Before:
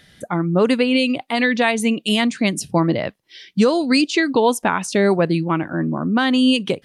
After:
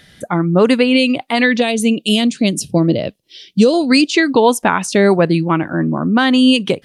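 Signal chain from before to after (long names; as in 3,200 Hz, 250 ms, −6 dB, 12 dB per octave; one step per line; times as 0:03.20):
0:01.60–0:03.74: flat-topped bell 1,300 Hz −12 dB
level +4.5 dB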